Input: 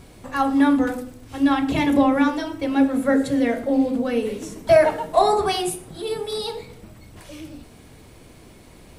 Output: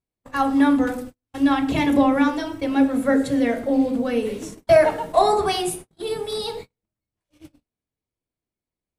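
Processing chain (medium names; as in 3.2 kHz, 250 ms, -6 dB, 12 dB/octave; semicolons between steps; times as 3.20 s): gate -34 dBFS, range -44 dB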